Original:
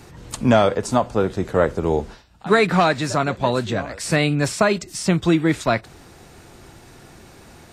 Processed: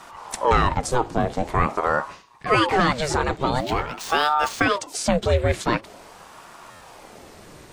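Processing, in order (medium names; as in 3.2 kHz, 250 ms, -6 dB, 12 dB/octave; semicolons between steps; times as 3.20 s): 3.60–4.63 s: median filter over 5 samples; in parallel at +2.5 dB: peak limiter -14 dBFS, peak gain reduction 10 dB; on the sum: buffer glitch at 6.70 s, samples 512, times 8; ring modulator with a swept carrier 640 Hz, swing 65%, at 0.46 Hz; trim -4 dB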